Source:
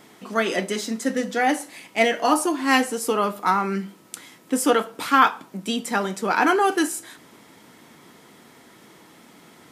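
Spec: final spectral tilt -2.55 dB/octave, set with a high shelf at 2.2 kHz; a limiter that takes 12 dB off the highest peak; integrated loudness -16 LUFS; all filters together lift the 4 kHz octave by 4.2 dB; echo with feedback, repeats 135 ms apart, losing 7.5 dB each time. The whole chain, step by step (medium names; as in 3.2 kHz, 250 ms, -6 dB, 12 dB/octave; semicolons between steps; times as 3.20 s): treble shelf 2.2 kHz +3 dB; peaking EQ 4 kHz +3 dB; peak limiter -13.5 dBFS; feedback delay 135 ms, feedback 42%, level -7.5 dB; trim +8 dB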